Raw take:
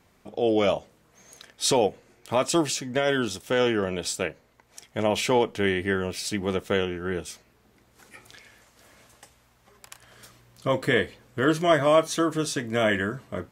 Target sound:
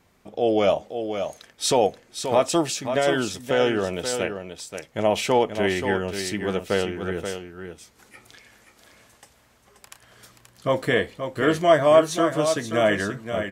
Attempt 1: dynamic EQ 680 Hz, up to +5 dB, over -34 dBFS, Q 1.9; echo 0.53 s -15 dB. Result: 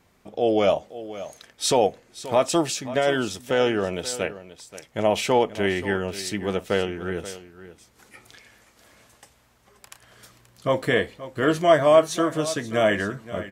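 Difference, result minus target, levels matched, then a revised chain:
echo-to-direct -7 dB
dynamic EQ 680 Hz, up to +5 dB, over -34 dBFS, Q 1.9; echo 0.53 s -8 dB

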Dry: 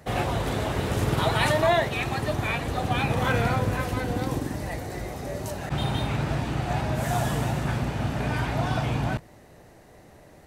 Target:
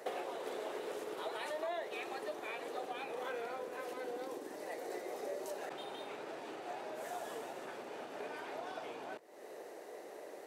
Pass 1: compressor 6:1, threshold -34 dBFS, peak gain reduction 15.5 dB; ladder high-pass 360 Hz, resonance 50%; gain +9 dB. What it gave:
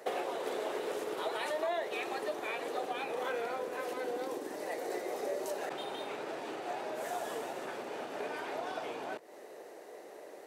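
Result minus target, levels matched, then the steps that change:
compressor: peak gain reduction -5.5 dB
change: compressor 6:1, threshold -40.5 dBFS, peak gain reduction 21 dB

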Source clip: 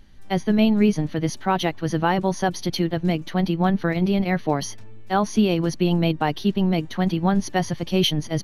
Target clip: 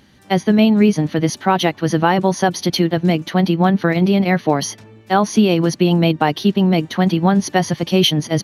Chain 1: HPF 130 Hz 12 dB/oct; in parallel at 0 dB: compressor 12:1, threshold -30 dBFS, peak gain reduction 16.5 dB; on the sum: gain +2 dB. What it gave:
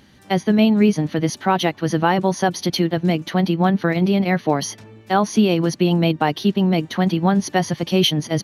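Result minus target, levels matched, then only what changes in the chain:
compressor: peak gain reduction +9.5 dB
change: compressor 12:1, threshold -19.5 dBFS, peak gain reduction 7 dB

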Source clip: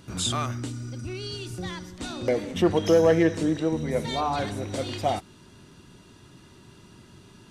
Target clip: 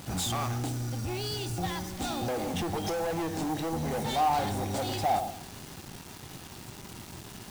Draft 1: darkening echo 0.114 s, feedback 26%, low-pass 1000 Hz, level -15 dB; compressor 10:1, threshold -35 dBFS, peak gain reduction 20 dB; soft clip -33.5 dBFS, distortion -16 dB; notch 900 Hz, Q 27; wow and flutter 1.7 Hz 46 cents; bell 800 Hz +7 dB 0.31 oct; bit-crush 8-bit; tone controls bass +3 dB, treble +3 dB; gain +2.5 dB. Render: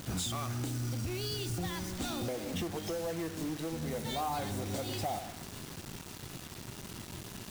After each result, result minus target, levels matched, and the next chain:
compressor: peak gain reduction +10.5 dB; 1000 Hz band -3.5 dB
darkening echo 0.114 s, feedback 26%, low-pass 1000 Hz, level -15 dB; compressor 10:1, threshold -23.5 dBFS, peak gain reduction 10 dB; soft clip -33.5 dBFS, distortion -7 dB; notch 900 Hz, Q 27; wow and flutter 1.7 Hz 46 cents; bell 800 Hz +7 dB 0.31 oct; bit-crush 8-bit; tone controls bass +3 dB, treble +3 dB; gain +2.5 dB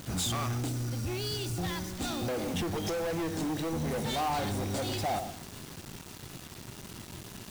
1000 Hz band -4.0 dB
darkening echo 0.114 s, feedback 26%, low-pass 1000 Hz, level -15 dB; compressor 10:1, threshold -23.5 dBFS, peak gain reduction 10 dB; soft clip -33.5 dBFS, distortion -7 dB; notch 900 Hz, Q 27; wow and flutter 1.7 Hz 46 cents; bell 800 Hz +16 dB 0.31 oct; bit-crush 8-bit; tone controls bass +3 dB, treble +3 dB; gain +2.5 dB

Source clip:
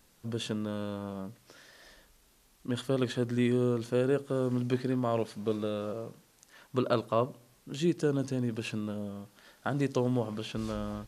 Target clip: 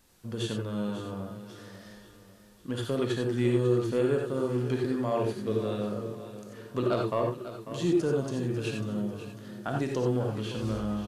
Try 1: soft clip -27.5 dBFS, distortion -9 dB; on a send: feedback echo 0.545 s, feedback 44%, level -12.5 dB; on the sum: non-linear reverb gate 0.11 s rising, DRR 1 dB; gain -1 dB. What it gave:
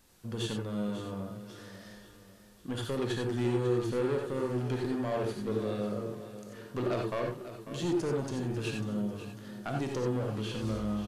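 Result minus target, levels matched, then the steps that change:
soft clip: distortion +15 dB
change: soft clip -15.5 dBFS, distortion -24 dB

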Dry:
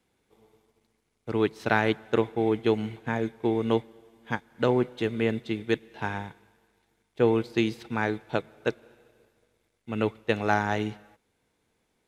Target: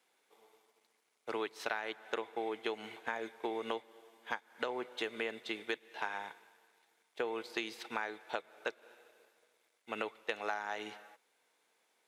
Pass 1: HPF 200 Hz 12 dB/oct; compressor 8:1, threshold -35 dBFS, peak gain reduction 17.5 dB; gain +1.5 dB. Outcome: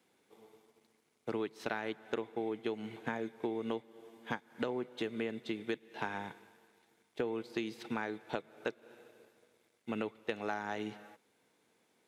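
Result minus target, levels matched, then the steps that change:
250 Hz band +6.5 dB
change: HPF 610 Hz 12 dB/oct

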